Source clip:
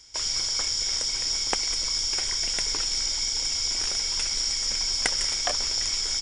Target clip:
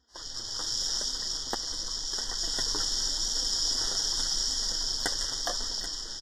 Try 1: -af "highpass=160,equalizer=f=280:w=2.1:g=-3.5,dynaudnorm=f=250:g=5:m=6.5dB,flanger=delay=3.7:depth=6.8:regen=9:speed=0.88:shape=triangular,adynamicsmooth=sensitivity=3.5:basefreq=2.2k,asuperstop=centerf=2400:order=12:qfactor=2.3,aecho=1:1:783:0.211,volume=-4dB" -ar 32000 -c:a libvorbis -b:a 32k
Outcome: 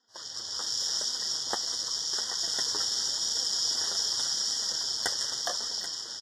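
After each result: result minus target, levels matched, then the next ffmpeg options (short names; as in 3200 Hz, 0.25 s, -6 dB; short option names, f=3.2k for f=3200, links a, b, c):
125 Hz band -9.5 dB; 250 Hz band -5.5 dB
-af "equalizer=f=280:w=2.1:g=-3.5,dynaudnorm=f=250:g=5:m=6.5dB,flanger=delay=3.7:depth=6.8:regen=9:speed=0.88:shape=triangular,adynamicsmooth=sensitivity=3.5:basefreq=2.2k,asuperstop=centerf=2400:order=12:qfactor=2.3,aecho=1:1:783:0.211,volume=-4dB" -ar 32000 -c:a libvorbis -b:a 32k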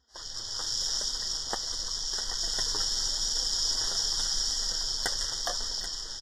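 250 Hz band -5.0 dB
-af "equalizer=f=280:w=2.1:g=4,dynaudnorm=f=250:g=5:m=6.5dB,flanger=delay=3.7:depth=6.8:regen=9:speed=0.88:shape=triangular,adynamicsmooth=sensitivity=3.5:basefreq=2.2k,asuperstop=centerf=2400:order=12:qfactor=2.3,aecho=1:1:783:0.211,volume=-4dB" -ar 32000 -c:a libvorbis -b:a 32k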